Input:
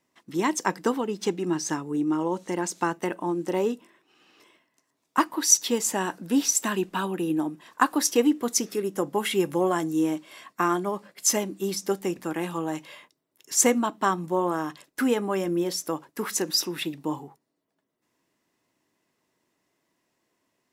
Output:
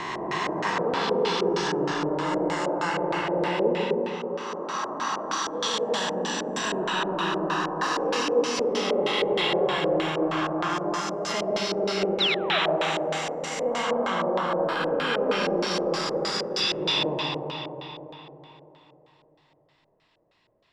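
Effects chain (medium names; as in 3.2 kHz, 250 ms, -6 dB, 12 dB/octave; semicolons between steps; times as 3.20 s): reverse spectral sustain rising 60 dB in 1.94 s; peaking EQ 280 Hz -12.5 dB 1.2 oct; painted sound fall, 12.20–12.59 s, 570–4200 Hz -21 dBFS; reverse; compression 6:1, threshold -28 dBFS, peak gain reduction 17 dB; reverse; bass shelf 110 Hz +8 dB; band-stop 6.2 kHz, Q 8.4; algorithmic reverb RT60 3.7 s, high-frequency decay 0.75×, pre-delay 65 ms, DRR -4 dB; LFO low-pass square 3.2 Hz 560–3800 Hz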